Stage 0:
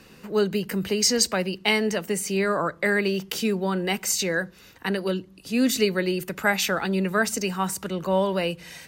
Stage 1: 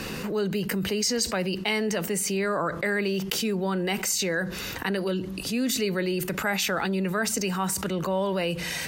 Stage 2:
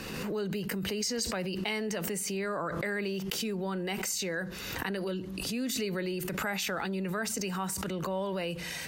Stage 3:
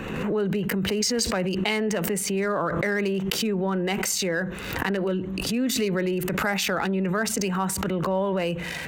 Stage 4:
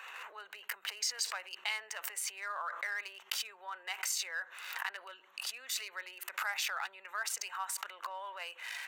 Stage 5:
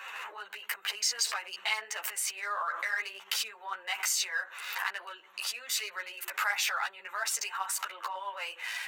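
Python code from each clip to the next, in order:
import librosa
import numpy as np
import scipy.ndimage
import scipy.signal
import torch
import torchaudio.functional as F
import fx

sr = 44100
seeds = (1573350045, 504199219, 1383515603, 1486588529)

y1 = fx.env_flatten(x, sr, amount_pct=70)
y1 = y1 * librosa.db_to_amplitude(-7.0)
y2 = fx.pre_swell(y1, sr, db_per_s=29.0)
y2 = y2 * librosa.db_to_amplitude(-7.0)
y3 = fx.wiener(y2, sr, points=9)
y3 = y3 * librosa.db_to_amplitude(8.5)
y4 = scipy.signal.sosfilt(scipy.signal.butter(4, 910.0, 'highpass', fs=sr, output='sos'), y3)
y4 = y4 * librosa.db_to_amplitude(-8.5)
y5 = fx.ensemble(y4, sr)
y5 = y5 * librosa.db_to_amplitude(8.5)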